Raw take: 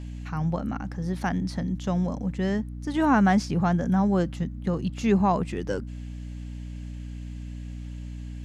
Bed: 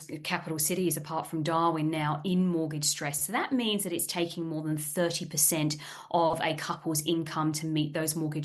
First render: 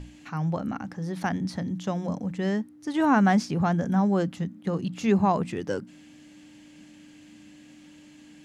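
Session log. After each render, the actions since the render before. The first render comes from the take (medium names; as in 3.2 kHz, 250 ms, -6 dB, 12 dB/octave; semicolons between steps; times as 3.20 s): hum notches 60/120/180/240 Hz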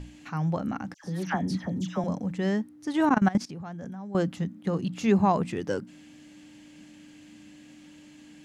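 0.94–2.04 s: phase dispersion lows, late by 102 ms, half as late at 1.7 kHz; 3.09–4.15 s: level held to a coarse grid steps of 19 dB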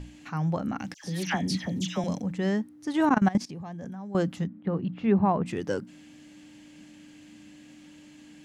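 0.79–2.22 s: resonant high shelf 1.8 kHz +8 dB, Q 1.5; 3.25–3.85 s: band-stop 1.4 kHz, Q 5.5; 4.46–5.46 s: distance through air 450 m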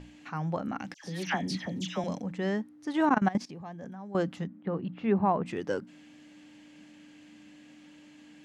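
low-pass 3.6 kHz 6 dB/octave; bass shelf 180 Hz -10.5 dB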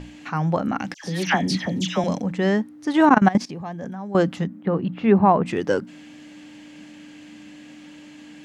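trim +10 dB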